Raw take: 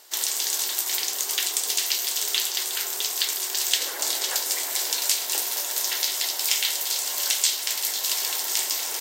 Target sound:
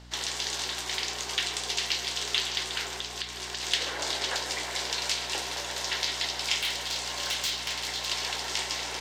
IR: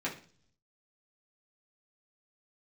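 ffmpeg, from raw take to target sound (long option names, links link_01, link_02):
-filter_complex "[0:a]lowpass=4000,asettb=1/sr,asplit=3[link_01][link_02][link_03];[link_01]atrim=end=2.874[link_04];[link_02]atrim=start=2.87:end=3.63,asetpts=PTS-STARTPTS,afade=type=in:duration=0.004:curve=qsin,afade=type=out:start_time=0.756:duration=0.004:curve=qsin,acompressor=threshold=-33dB:ratio=6[link_05];[link_03]atrim=start=3.626[link_06];[link_04][link_05]acrossfade=duration=0.004:curve1=hsin:curve2=qsin[link_07];[link_07][link_06]acrossfade=duration=0.004:curve1=qsin:curve2=hsin,asoftclip=type=tanh:threshold=-12dB,aeval=exprs='val(0)+0.00355*(sin(2*PI*60*n/s)+sin(2*PI*2*60*n/s)/2+sin(2*PI*3*60*n/s)/3+sin(2*PI*4*60*n/s)/4+sin(2*PI*5*60*n/s)/5)':channel_layout=same,asettb=1/sr,asplit=3[link_08][link_09][link_10];[link_08]atrim=end=6.604[link_11];[link_09]atrim=start=6.6:end=8.06,asetpts=PTS-STARTPTS,afade=type=in:duration=0.004:curve=qsin,afade=type=out:start_time=1.456:duration=0.004:curve=qsin,volume=26dB,asoftclip=hard,volume=-26dB[link_12];[link_10]atrim=start=8.056[link_13];[link_11][link_12]acrossfade=duration=0.004:curve1=hsin:curve2=qsin[link_14];[link_14][link_13]acrossfade=duration=0.004:curve1=qsin:curve2=hsin,asplit=2[link_15][link_16];[1:a]atrim=start_sample=2205,adelay=133[link_17];[link_16][link_17]afir=irnorm=-1:irlink=0,volume=-16.5dB[link_18];[link_15][link_18]amix=inputs=2:normalize=0,volume=1dB"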